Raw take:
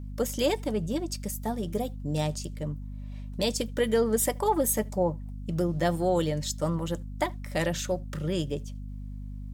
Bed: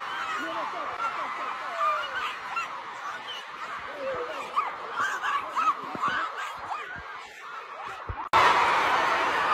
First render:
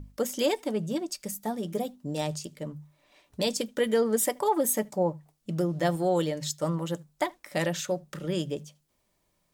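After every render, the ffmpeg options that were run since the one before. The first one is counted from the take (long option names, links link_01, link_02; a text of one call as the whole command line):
ffmpeg -i in.wav -af "bandreject=frequency=50:width_type=h:width=6,bandreject=frequency=100:width_type=h:width=6,bandreject=frequency=150:width_type=h:width=6,bandreject=frequency=200:width_type=h:width=6,bandreject=frequency=250:width_type=h:width=6" out.wav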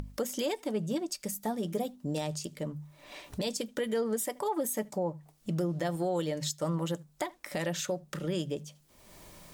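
ffmpeg -i in.wav -af "alimiter=limit=-22.5dB:level=0:latency=1:release=197,acompressor=mode=upward:threshold=-33dB:ratio=2.5" out.wav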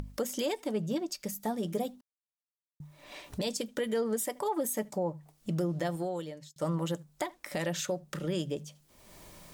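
ffmpeg -i in.wav -filter_complex "[0:a]asettb=1/sr,asplit=3[link_01][link_02][link_03];[link_01]atrim=end=0.814[link_04];[link_02]atrim=start=0.81:end=1.4,asetpts=PTS-STARTPTS,afade=type=in:duration=0.004:curve=qsin,afade=type=out:start_time=0.586:duration=0.004:curve=qsin,equalizer=frequency=8900:width=2.4:gain=-7.5[link_05];[link_03]atrim=start=1.396[link_06];[link_04][link_05]acrossfade=duration=0.004:curve1=hsin:curve2=qsin[link_07];[link_07][link_06]acrossfade=duration=0.004:curve1=qsin:curve2=hsin,asplit=4[link_08][link_09][link_10][link_11];[link_08]atrim=end=2.01,asetpts=PTS-STARTPTS,afade=type=out:start_time=2.006:duration=0.004:curve=hsin[link_12];[link_09]atrim=start=2.01:end=2.8,asetpts=PTS-STARTPTS,volume=0[link_13];[link_10]atrim=start=2.8:end=6.56,asetpts=PTS-STARTPTS,afade=type=in:duration=0.004:curve=hsin,afade=type=out:start_time=3.03:duration=0.73[link_14];[link_11]atrim=start=6.56,asetpts=PTS-STARTPTS,afade=type=in:duration=0.004:curve=hsin[link_15];[link_12][link_13][link_14][link_15]concat=n=4:v=0:a=1" out.wav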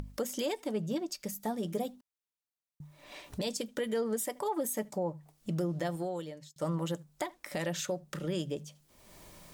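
ffmpeg -i in.wav -af "volume=-1.5dB" out.wav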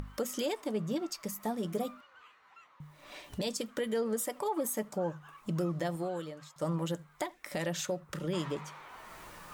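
ffmpeg -i in.wav -i bed.wav -filter_complex "[1:a]volume=-26.5dB[link_01];[0:a][link_01]amix=inputs=2:normalize=0" out.wav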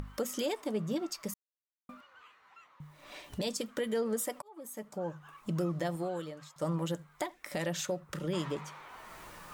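ffmpeg -i in.wav -filter_complex "[0:a]asplit=4[link_01][link_02][link_03][link_04];[link_01]atrim=end=1.34,asetpts=PTS-STARTPTS,afade=type=out:start_time=1.336:duration=0.004:curve=hsin[link_05];[link_02]atrim=start=1.34:end=1.89,asetpts=PTS-STARTPTS,volume=0[link_06];[link_03]atrim=start=1.89:end=4.42,asetpts=PTS-STARTPTS,afade=type=in:duration=0.004:curve=hsin,afade=type=out:start_time=2.526:duration=0.004:curve=hsin[link_07];[link_04]atrim=start=4.42,asetpts=PTS-STARTPTS,afade=type=in:duration=0.92[link_08];[link_05][link_06][link_07][link_08]concat=n=4:v=0:a=1" out.wav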